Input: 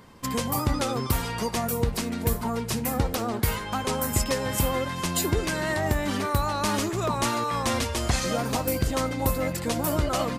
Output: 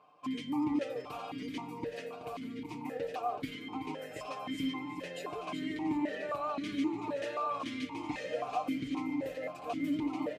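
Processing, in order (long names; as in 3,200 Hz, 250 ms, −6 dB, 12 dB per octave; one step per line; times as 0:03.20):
comb filter 6.7 ms, depth 75%
on a send: repeating echo 378 ms, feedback 58%, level −8 dB
on the sum: formant filter that steps through the vowels 3.8 Hz
level −1 dB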